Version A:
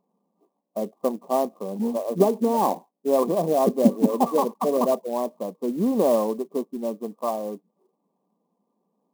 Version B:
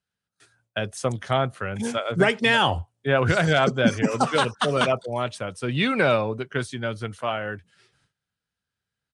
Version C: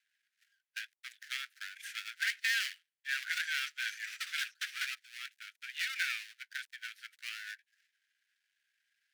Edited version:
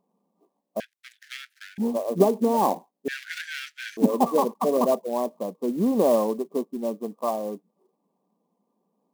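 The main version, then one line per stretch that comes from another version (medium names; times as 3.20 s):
A
0.80–1.78 s: from C
3.08–3.97 s: from C
not used: B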